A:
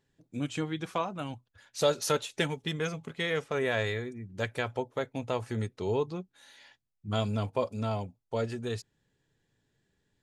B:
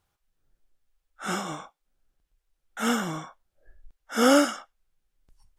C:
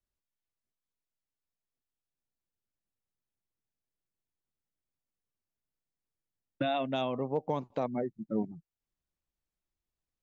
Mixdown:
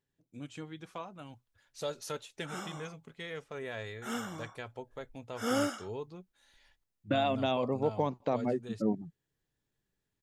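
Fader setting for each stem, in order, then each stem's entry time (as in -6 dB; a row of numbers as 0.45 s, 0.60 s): -11.0 dB, -11.5 dB, +1.5 dB; 0.00 s, 1.25 s, 0.50 s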